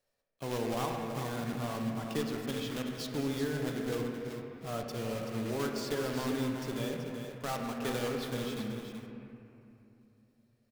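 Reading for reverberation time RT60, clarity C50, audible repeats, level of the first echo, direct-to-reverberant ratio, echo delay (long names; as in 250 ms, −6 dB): 2.8 s, 1.5 dB, 2, −15.0 dB, 0.5 dB, 218 ms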